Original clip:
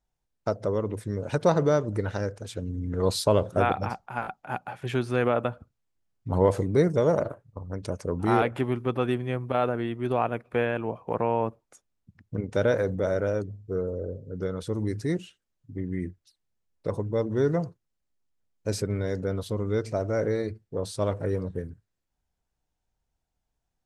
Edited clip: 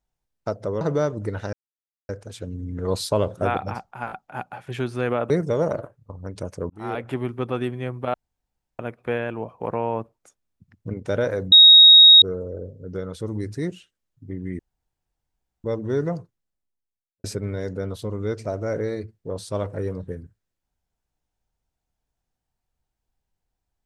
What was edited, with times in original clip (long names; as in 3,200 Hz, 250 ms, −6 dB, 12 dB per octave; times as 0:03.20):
0:00.81–0:01.52: remove
0:02.24: splice in silence 0.56 s
0:05.45–0:06.77: remove
0:08.17–0:08.63: fade in
0:09.61–0:10.26: fill with room tone
0:12.99–0:13.69: beep over 3,770 Hz −6 dBFS
0:16.06–0:17.11: fill with room tone
0:17.66–0:18.71: fade out and dull